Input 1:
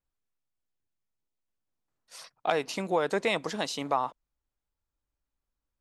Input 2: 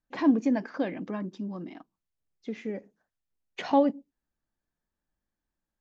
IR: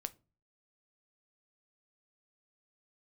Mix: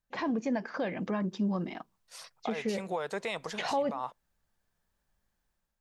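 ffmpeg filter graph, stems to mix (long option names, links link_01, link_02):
-filter_complex "[0:a]alimiter=limit=-21.5dB:level=0:latency=1:release=170,volume=-9.5dB,asplit=2[link_01][link_02];[link_02]volume=-20dB[link_03];[1:a]volume=0dB[link_04];[2:a]atrim=start_sample=2205[link_05];[link_03][link_05]afir=irnorm=-1:irlink=0[link_06];[link_01][link_04][link_06]amix=inputs=3:normalize=0,equalizer=frequency=290:width_type=o:width=0.49:gain=-11,dynaudnorm=framelen=500:gausssize=3:maxgain=8dB,alimiter=limit=-22dB:level=0:latency=1:release=239"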